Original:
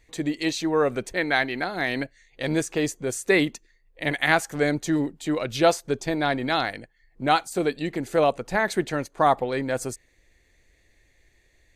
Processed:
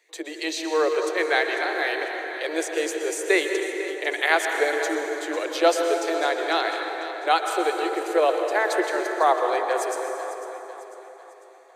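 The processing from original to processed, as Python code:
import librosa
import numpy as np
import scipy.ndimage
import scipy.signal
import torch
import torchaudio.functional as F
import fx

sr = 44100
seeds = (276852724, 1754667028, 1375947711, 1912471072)

y = scipy.signal.sosfilt(scipy.signal.butter(16, 330.0, 'highpass', fs=sr, output='sos'), x)
y = fx.echo_feedback(y, sr, ms=498, feedback_pct=47, wet_db=-13.5)
y = fx.rev_plate(y, sr, seeds[0], rt60_s=3.5, hf_ratio=0.5, predelay_ms=105, drr_db=3.5)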